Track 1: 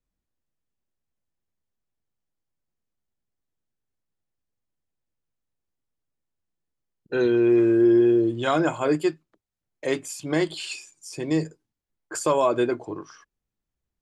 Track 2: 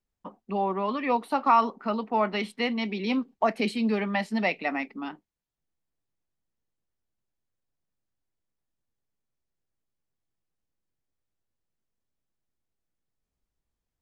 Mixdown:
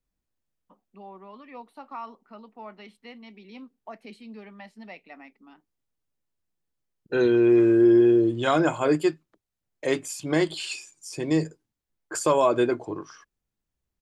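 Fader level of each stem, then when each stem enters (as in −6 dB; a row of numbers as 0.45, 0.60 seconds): +0.5, −17.0 decibels; 0.00, 0.45 seconds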